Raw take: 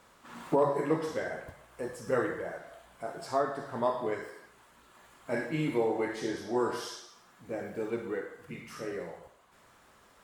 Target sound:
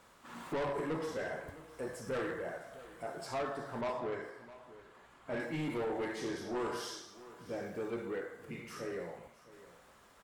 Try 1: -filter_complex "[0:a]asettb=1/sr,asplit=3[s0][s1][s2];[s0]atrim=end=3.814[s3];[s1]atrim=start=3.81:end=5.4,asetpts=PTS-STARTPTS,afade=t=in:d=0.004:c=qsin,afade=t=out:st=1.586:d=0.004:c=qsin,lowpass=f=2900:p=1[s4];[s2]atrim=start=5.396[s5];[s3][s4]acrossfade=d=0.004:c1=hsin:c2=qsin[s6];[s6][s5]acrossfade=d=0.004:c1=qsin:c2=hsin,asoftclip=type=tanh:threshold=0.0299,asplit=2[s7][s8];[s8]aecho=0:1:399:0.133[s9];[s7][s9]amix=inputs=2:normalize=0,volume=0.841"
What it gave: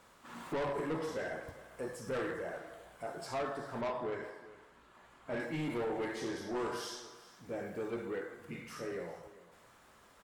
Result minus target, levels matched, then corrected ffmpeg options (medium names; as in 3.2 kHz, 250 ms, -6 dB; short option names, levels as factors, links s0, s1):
echo 260 ms early
-filter_complex "[0:a]asettb=1/sr,asplit=3[s0][s1][s2];[s0]atrim=end=3.814[s3];[s1]atrim=start=3.81:end=5.4,asetpts=PTS-STARTPTS,afade=t=in:d=0.004:c=qsin,afade=t=out:st=1.586:d=0.004:c=qsin,lowpass=f=2900:p=1[s4];[s2]atrim=start=5.396[s5];[s3][s4]acrossfade=d=0.004:c1=hsin:c2=qsin[s6];[s6][s5]acrossfade=d=0.004:c1=qsin:c2=hsin,asoftclip=type=tanh:threshold=0.0299,asplit=2[s7][s8];[s8]aecho=0:1:659:0.133[s9];[s7][s9]amix=inputs=2:normalize=0,volume=0.841"